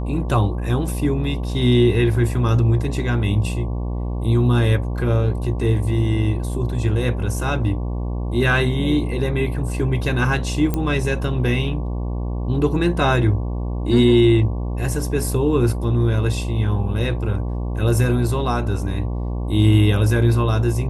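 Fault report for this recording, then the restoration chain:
buzz 60 Hz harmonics 19 -24 dBFS
10.74 pop -9 dBFS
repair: de-click; de-hum 60 Hz, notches 19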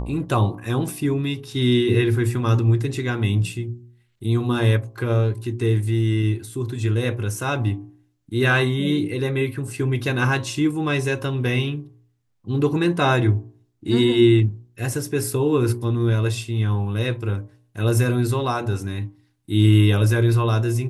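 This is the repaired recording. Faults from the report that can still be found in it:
none

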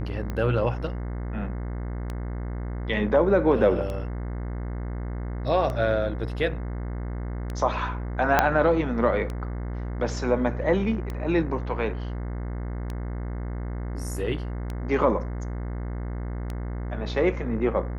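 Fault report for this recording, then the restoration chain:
buzz 60 Hz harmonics 36 -31 dBFS
tick 33 1/3 rpm -19 dBFS
8.39 pop -4 dBFS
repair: de-click; de-hum 60 Hz, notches 36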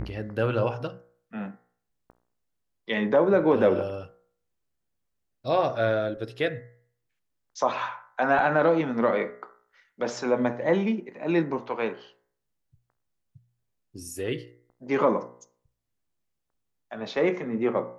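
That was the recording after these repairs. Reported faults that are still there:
8.39 pop

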